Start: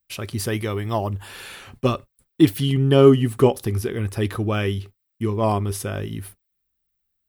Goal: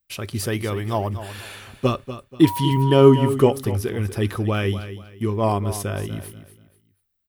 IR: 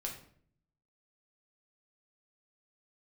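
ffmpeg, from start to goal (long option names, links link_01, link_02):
-filter_complex "[0:a]aecho=1:1:241|482|723:0.237|0.0711|0.0213,asettb=1/sr,asplit=3[link_01][link_02][link_03];[link_01]atrim=end=2.444[link_04];[link_02]atrim=start=2.44:end=3.29,asetpts=PTS-STARTPTS,afade=type=in:duration=0.004:curve=qsin,afade=type=out:start_time=0.846:duration=0.004:curve=qsin,aeval=exprs='val(0)+0.0501*sin(2*PI*960*n/s)':channel_layout=same[link_05];[link_03]atrim=start=3.286[link_06];[link_04][link_05]acrossfade=duration=0.004:curve1=hsin:curve2=qsin[link_07];[link_07][link_06]acrossfade=duration=0.004:curve1=qsin:curve2=hsin"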